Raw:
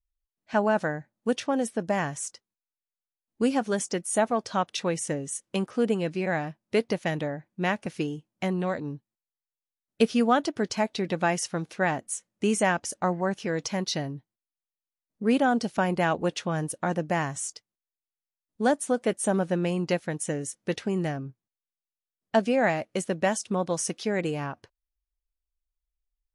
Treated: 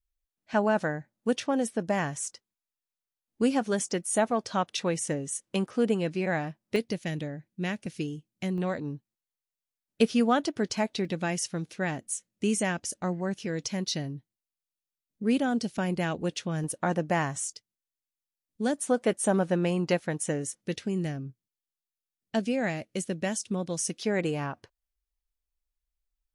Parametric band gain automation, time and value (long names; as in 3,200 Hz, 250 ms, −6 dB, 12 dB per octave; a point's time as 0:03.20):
parametric band 940 Hz 2 octaves
−2 dB
from 0:06.76 −13 dB
from 0:08.58 −3.5 dB
from 0:11.05 −9.5 dB
from 0:16.64 0 dB
from 0:17.44 −10.5 dB
from 0:18.78 +0.5 dB
from 0:20.61 −11 dB
from 0:24.02 −0.5 dB